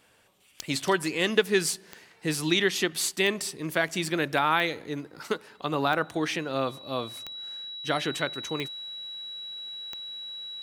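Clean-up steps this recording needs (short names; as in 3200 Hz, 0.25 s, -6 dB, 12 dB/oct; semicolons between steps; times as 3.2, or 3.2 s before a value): de-click; notch 3900 Hz, Q 30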